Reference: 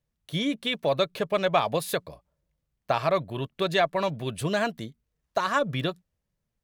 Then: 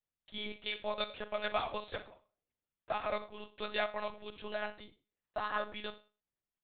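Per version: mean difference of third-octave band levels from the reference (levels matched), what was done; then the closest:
9.0 dB: low-shelf EQ 110 Hz −8 dB
four-comb reverb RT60 0.32 s, combs from 33 ms, DRR 10 dB
one-pitch LPC vocoder at 8 kHz 210 Hz
low-shelf EQ 430 Hz −9 dB
level −8.5 dB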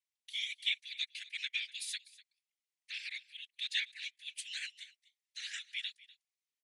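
19.5 dB: Butterworth high-pass 1,900 Hz 72 dB per octave
random phases in short frames
on a send: single-tap delay 247 ms −20 dB
on the sum: downsampling to 22,050 Hz
level −3.5 dB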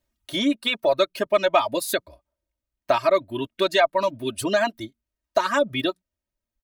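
4.5 dB: reverb reduction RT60 1.6 s
low-shelf EQ 110 Hz −6 dB
comb filter 3.2 ms, depth 95%
in parallel at −2 dB: downward compressor, threshold −29 dBFS, peak gain reduction 14 dB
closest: third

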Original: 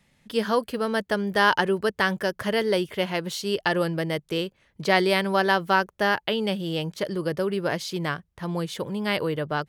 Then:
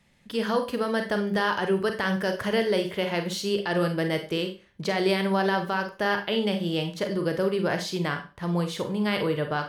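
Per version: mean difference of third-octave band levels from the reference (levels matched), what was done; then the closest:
4.0 dB: high-shelf EQ 9,700 Hz −5 dB
brickwall limiter −16.5 dBFS, peak gain reduction 11 dB
four-comb reverb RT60 0.32 s, combs from 31 ms, DRR 5.5 dB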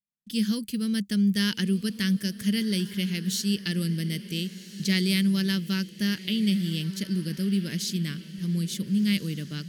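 9.0 dB: noise gate −48 dBFS, range −39 dB
drawn EQ curve 120 Hz 0 dB, 200 Hz +13 dB, 810 Hz −28 dB, 2,100 Hz 0 dB, 6,200 Hz +11 dB
feedback delay with all-pass diffusion 1,432 ms, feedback 40%, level −14.5 dB
level −5.5 dB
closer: first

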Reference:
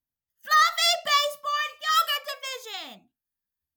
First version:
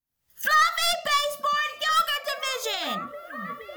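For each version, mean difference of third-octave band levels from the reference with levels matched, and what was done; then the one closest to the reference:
5.5 dB: stylus tracing distortion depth 0.037 ms
camcorder AGC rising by 79 dB per second
dynamic equaliser 1,600 Hz, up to +5 dB, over −34 dBFS, Q 2.6
on a send: echo through a band-pass that steps 472 ms, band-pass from 170 Hz, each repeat 0.7 octaves, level −1 dB
on the sum: level −2.5 dB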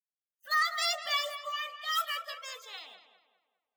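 3.5 dB: spectral magnitudes quantised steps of 30 dB
high-pass filter 500 Hz 12 dB per octave
noise reduction from a noise print of the clip's start 16 dB
on a send: feedback echo with a low-pass in the loop 201 ms, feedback 42%, low-pass 2,800 Hz, level −10 dB
on the sum: level −8 dB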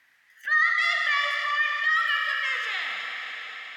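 8.5 dB: in parallel at +0.5 dB: brickwall limiter −21.5 dBFS, peak gain reduction 11 dB
on the sum: resonant band-pass 1,900 Hz, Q 5.4
four-comb reverb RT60 2.9 s, combs from 33 ms, DRR 3 dB
envelope flattener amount 50%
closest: second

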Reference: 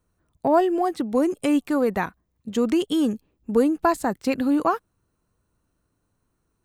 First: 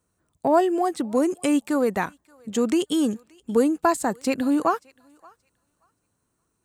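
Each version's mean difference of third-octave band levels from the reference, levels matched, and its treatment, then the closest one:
1.5 dB: high-pass filter 110 Hz 6 dB per octave
parametric band 7,900 Hz +8 dB 0.75 octaves
feedback echo with a high-pass in the loop 577 ms, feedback 20%, high-pass 960 Hz, level −24 dB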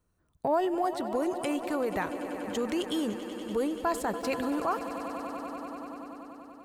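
8.0 dB: on a send: echo that builds up and dies away 96 ms, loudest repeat 5, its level −17 dB
on the sum: brickwall limiter −15 dBFS, peak gain reduction 6.5 dB
dynamic equaliser 250 Hz, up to −7 dB, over −37 dBFS, Q 1.2
level −3 dB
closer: first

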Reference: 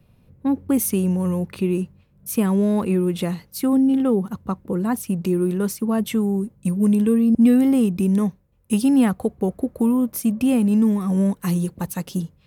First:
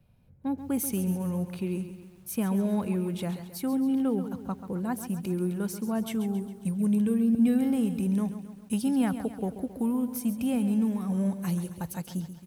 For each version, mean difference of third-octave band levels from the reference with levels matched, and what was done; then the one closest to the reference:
3.5 dB: comb filter 1.3 ms, depth 30%
feedback echo at a low word length 135 ms, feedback 55%, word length 8 bits, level −11 dB
level −8.5 dB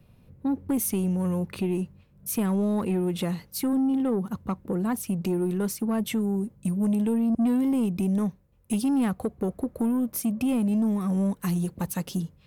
2.5 dB: in parallel at +3 dB: downward compressor, threshold −25 dBFS, peak gain reduction 13 dB
on the sum: soft clipping −10.5 dBFS, distortion −18 dB
level −8 dB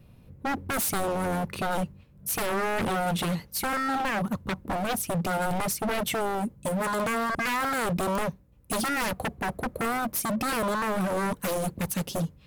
13.5 dB: wave folding −24.5 dBFS
mains hum 60 Hz, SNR 34 dB
level +2 dB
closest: second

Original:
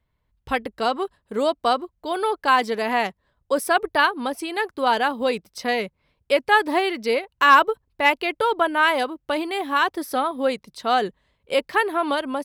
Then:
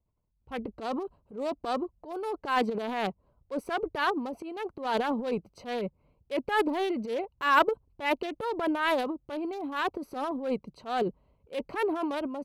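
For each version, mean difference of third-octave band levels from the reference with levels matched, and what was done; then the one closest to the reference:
6.0 dB: adaptive Wiener filter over 25 samples
transient designer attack −8 dB, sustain +11 dB
level −7.5 dB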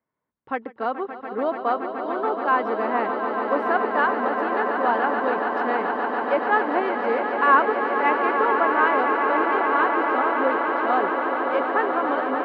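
11.5 dB: Chebyshev band-pass filter 250–1,500 Hz, order 2
echo that builds up and dies away 143 ms, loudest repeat 8, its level −9.5 dB
level −2.5 dB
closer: first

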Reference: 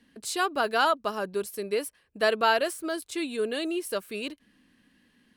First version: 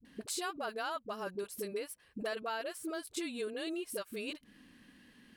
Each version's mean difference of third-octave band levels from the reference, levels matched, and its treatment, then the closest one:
8.0 dB: downward compressor 5 to 1, threshold −41 dBFS, peak gain reduction 20 dB
all-pass dispersion highs, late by 51 ms, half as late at 400 Hz
level +3.5 dB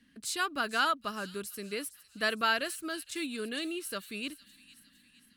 4.5 dB: flat-topped bell 600 Hz −9 dB
delay with a high-pass on its return 459 ms, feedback 52%, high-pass 3,700 Hz, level −13 dB
level −2 dB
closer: second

